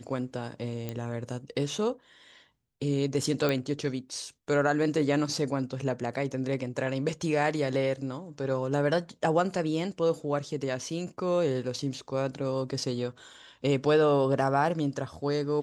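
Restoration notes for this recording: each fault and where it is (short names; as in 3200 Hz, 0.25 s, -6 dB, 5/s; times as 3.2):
0.89 pop -20 dBFS
3.49 pop -14 dBFS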